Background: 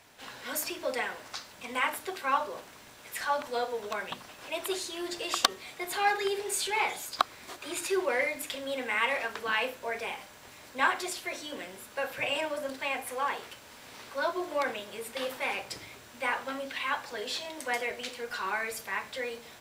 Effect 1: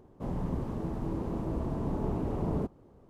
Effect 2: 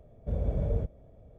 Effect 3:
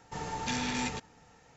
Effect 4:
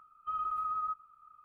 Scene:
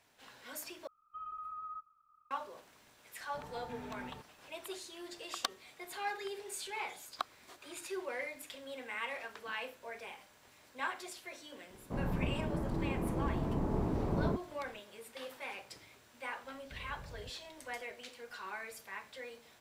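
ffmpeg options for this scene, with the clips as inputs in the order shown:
-filter_complex "[0:a]volume=-11.5dB[a];[3:a]lowpass=1.5k[b];[1:a]lowpass=f=2.1k:t=q:w=1.5[c];[2:a]acompressor=threshold=-29dB:ratio=6:attack=3.2:release=140:knee=1:detection=peak[d];[a]asplit=2[e][f];[e]atrim=end=0.874[g];[4:a]atrim=end=1.44,asetpts=PTS-STARTPTS,volume=-10dB[h];[f]atrim=start=2.306[i];[b]atrim=end=1.56,asetpts=PTS-STARTPTS,volume=-12dB,afade=t=in:d=0.004:c=hsin,afade=t=out:st=1.556:d=0.004:c=hsin,adelay=3220[j];[c]atrim=end=3.09,asetpts=PTS-STARTPTS,volume=-2dB,afade=t=in:d=0.004:c=hsin,afade=t=out:st=3.086:d=0.004:c=hsin,adelay=515970S[k];[d]atrim=end=1.38,asetpts=PTS-STARTPTS,volume=-16dB,afade=t=in:d=0.004:c=hsin,afade=t=out:st=1.376:d=0.004:c=hsin,adelay=16440[l];[g][h]acrossfade=d=0.004:c1=hsin:c2=hsin[m];[m][i]acrossfade=d=0.004:c1=hsin:c2=hsin[n];[n][j][k][l]amix=inputs=4:normalize=0"

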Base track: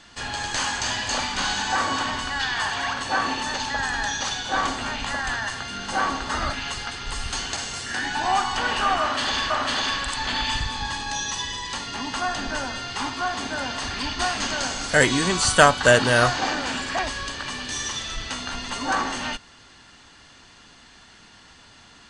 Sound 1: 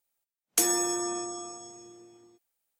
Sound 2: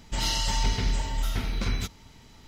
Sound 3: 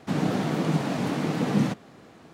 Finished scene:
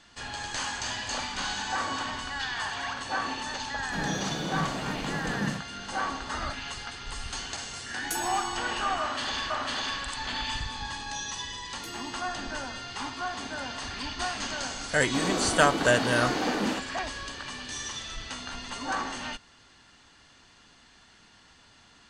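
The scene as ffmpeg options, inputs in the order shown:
-filter_complex "[3:a]asplit=2[a][b];[1:a]asplit=2[c][d];[0:a]volume=-7dB[e];[a]acrossover=split=270[f][g];[f]adelay=30[h];[h][g]amix=inputs=2:normalize=0[i];[c]asoftclip=type=tanh:threshold=-7.5dB[j];[d]equalizer=f=11k:t=o:w=1.7:g=-10.5[k];[b]highpass=f=250:w=0.5412,highpass=f=250:w=1.3066[l];[i]atrim=end=2.33,asetpts=PTS-STARTPTS,volume=-6dB,afade=t=in:d=0.004:c=hsin,afade=t=out:st=2.326:d=0.004:c=hsin,adelay=3840[m];[j]atrim=end=2.79,asetpts=PTS-STARTPTS,volume=-9.5dB,afade=t=in:d=0.004:c=hsin,afade=t=out:st=2.786:d=0.004:c=hsin,adelay=7530[n];[k]atrim=end=2.79,asetpts=PTS-STARTPTS,volume=-15.5dB,afade=t=in:d=0.004:c=hsin,afade=t=out:st=2.786:d=0.004:c=hsin,adelay=11260[o];[l]atrim=end=2.33,asetpts=PTS-STARTPTS,volume=-1.5dB,afade=t=in:d=0.004:c=hsin,afade=t=out:st=2.326:d=0.004:c=hsin,adelay=15060[p];[e][m][n][o][p]amix=inputs=5:normalize=0"

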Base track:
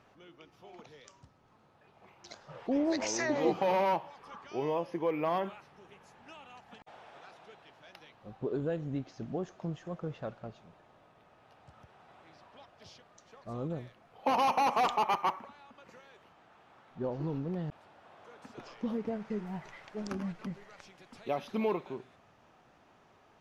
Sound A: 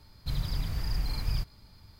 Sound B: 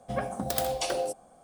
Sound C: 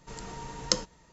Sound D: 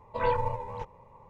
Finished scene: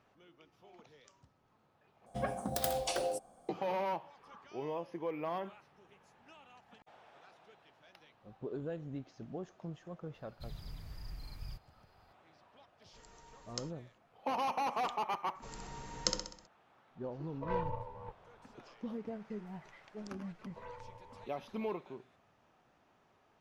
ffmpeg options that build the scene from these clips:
-filter_complex "[3:a]asplit=2[a][b];[4:a]asplit=2[c][d];[0:a]volume=-7dB[e];[a]equalizer=f=170:w=0.91:g=-8[f];[b]aecho=1:1:64|128|192|256|320|384:0.531|0.26|0.127|0.0625|0.0306|0.015[g];[c]adynamicsmooth=sensitivity=1:basefreq=1.5k[h];[d]acompressor=threshold=-48dB:ratio=2:attack=12:release=302:knee=1:detection=peak[i];[e]asplit=2[j][k];[j]atrim=end=2.064[l];[2:a]atrim=end=1.43,asetpts=PTS-STARTPTS,volume=-5dB[m];[k]atrim=start=3.486[n];[1:a]atrim=end=1.99,asetpts=PTS-STARTPTS,volume=-15.5dB,afade=t=in:d=0.004:c=hsin,afade=t=out:st=1.986:d=0.004:c=hsin,adelay=10140[o];[f]atrim=end=1.12,asetpts=PTS-STARTPTS,volume=-16.5dB,afade=t=in:d=0.004:c=hsin,afade=t=out:st=1.116:d=0.004:c=hsin,adelay=12860[p];[g]atrim=end=1.12,asetpts=PTS-STARTPTS,volume=-7.5dB,afade=t=in:d=0.004:c=hsin,afade=t=out:st=1.116:d=0.004:c=hsin,adelay=15350[q];[h]atrim=end=1.29,asetpts=PTS-STARTPTS,volume=-9dB,afade=t=in:d=0.004:c=hsin,afade=t=out:st=1.286:d=0.004:c=hsin,adelay=17270[r];[i]atrim=end=1.29,asetpts=PTS-STARTPTS,volume=-9.5dB,afade=t=in:d=0.004:c=hsin,afade=t=out:st=1.286:d=0.004:c=hsin,adelay=20420[s];[l][m]acrossfade=d=0.004:c1=hsin:c2=hsin[t];[t][n]acrossfade=d=0.004:c1=hsin:c2=hsin[u];[u][o][p][q][r][s]amix=inputs=6:normalize=0"

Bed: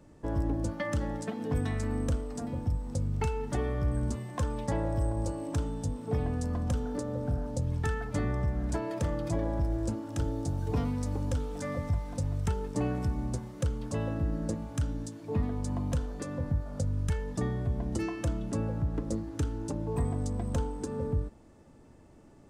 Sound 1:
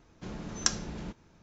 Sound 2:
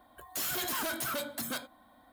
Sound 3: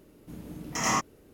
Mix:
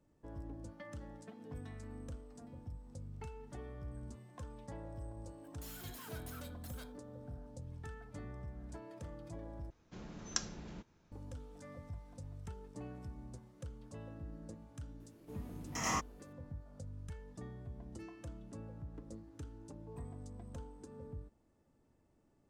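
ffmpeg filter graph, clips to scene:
-filter_complex "[0:a]volume=-17dB,asplit=2[a][b];[a]atrim=end=9.704[c];[1:a]atrim=end=1.42,asetpts=PTS-STARTPTS,volume=-9dB[d];[b]atrim=start=11.116[e];[2:a]atrim=end=2.12,asetpts=PTS-STARTPTS,volume=-17.5dB,afade=t=in:d=0.004:c=hsin,afade=t=out:st=2.116:d=0.004:c=hsin,adelay=5260[f];[3:a]atrim=end=1.33,asetpts=PTS-STARTPTS,volume=-9dB,afade=t=in:d=0.004:c=hsin,afade=t=out:st=1.326:d=0.004:c=hsin,adelay=15000[g];[c][d]acrossfade=d=0.004:c1=hsin:c2=hsin[h];[h][e]acrossfade=d=0.004:c1=hsin:c2=hsin[i];[i][f][g]amix=inputs=3:normalize=0"

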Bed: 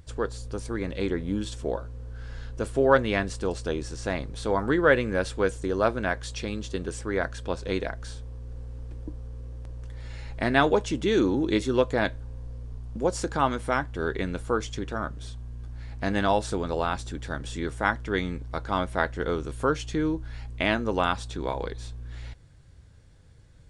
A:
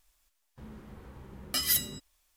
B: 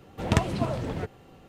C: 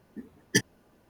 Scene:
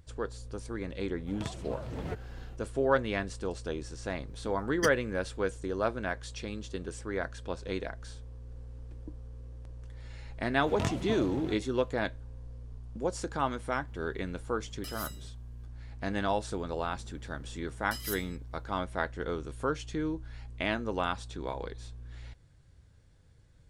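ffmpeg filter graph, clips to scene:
-filter_complex "[2:a]asplit=2[a][b];[1:a]asplit=2[c][d];[0:a]volume=-6.5dB[e];[a]dynaudnorm=f=240:g=3:m=16dB[f];[b]flanger=delay=16:depth=7.2:speed=1.8[g];[c]asoftclip=type=tanh:threshold=-23dB[h];[f]atrim=end=1.48,asetpts=PTS-STARTPTS,volume=-17dB,afade=t=in:d=0.004:c=hsin,afade=t=out:st=1.476:d=0.004:c=hsin,adelay=1090[i];[3:a]atrim=end=1.09,asetpts=PTS-STARTPTS,volume=-8.5dB,afade=t=in:d=0.004:c=hsin,afade=t=out:st=1.086:d=0.004:c=hsin,adelay=4280[j];[g]atrim=end=1.48,asetpts=PTS-STARTPTS,volume=-5.5dB,afade=t=in:d=0.004:c=hsin,afade=t=out:st=1.476:d=0.004:c=hsin,adelay=10480[k];[h]atrim=end=2.36,asetpts=PTS-STARTPTS,volume=-13dB,afade=t=in:d=0.004:c=hsin,afade=t=out:st=2.356:d=0.004:c=hsin,adelay=13300[l];[d]atrim=end=2.36,asetpts=PTS-STARTPTS,volume=-12dB,afade=t=in:d=0.004:c=hsin,afade=t=out:st=2.356:d=0.004:c=hsin,adelay=16370[m];[e][i][j][k][l][m]amix=inputs=6:normalize=0"

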